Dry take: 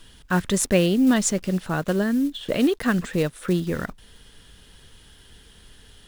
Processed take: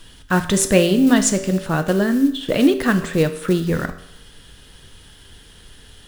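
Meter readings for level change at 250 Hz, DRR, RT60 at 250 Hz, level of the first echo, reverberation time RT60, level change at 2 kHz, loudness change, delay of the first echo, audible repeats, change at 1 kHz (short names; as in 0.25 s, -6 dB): +4.5 dB, 8.0 dB, 0.80 s, none, 0.75 s, +5.0 dB, +5.0 dB, none, none, +5.0 dB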